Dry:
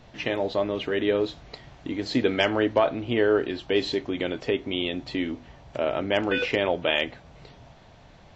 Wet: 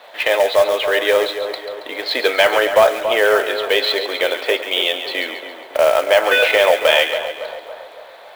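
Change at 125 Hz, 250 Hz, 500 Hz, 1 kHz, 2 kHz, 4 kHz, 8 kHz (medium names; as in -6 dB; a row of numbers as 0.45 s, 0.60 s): under -10 dB, -5.5 dB, +10.0 dB, +12.0 dB, +12.5 dB, +12.0 dB, no reading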